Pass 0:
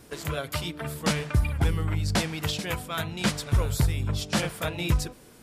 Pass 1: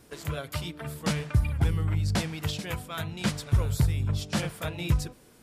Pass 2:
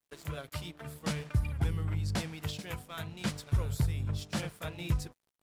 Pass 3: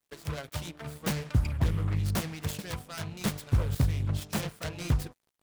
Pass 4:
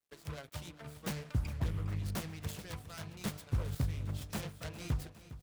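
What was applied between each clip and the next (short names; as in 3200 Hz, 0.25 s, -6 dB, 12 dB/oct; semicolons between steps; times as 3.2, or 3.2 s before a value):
dynamic EQ 110 Hz, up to +6 dB, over -37 dBFS, Q 0.84; gain -4.5 dB
crossover distortion -49.5 dBFS; gain -5.5 dB
self-modulated delay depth 0.67 ms; gain +4 dB
feedback echo 0.408 s, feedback 55%, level -15 dB; gain -8 dB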